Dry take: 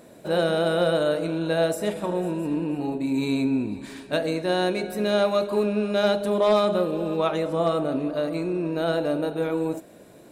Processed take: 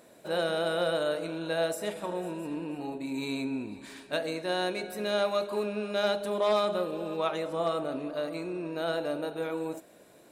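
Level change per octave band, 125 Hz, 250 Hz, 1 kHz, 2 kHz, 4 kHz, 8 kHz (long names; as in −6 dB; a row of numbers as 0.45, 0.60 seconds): −11.5, −9.5, −5.0, −4.0, −3.5, −3.5 decibels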